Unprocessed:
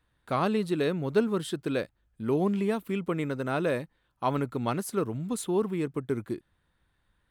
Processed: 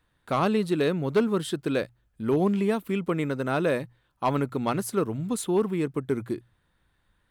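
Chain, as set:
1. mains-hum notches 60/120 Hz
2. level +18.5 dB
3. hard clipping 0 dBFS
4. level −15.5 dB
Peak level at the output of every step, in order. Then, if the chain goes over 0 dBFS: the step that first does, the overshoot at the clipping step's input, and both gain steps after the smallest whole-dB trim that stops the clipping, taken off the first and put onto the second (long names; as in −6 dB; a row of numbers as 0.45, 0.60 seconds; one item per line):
−13.5, +5.0, 0.0, −15.5 dBFS
step 2, 5.0 dB
step 2 +13.5 dB, step 4 −10.5 dB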